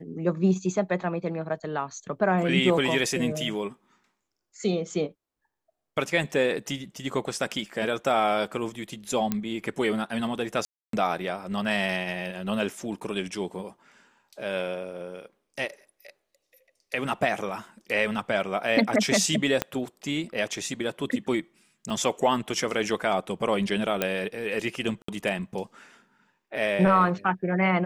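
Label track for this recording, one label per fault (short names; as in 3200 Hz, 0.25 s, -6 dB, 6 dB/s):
9.320000	9.320000	pop -12 dBFS
10.650000	10.930000	gap 0.283 s
19.620000	19.620000	pop -9 dBFS
21.900000	21.900000	gap 3.8 ms
24.020000	24.020000	pop -9 dBFS
25.020000	25.080000	gap 64 ms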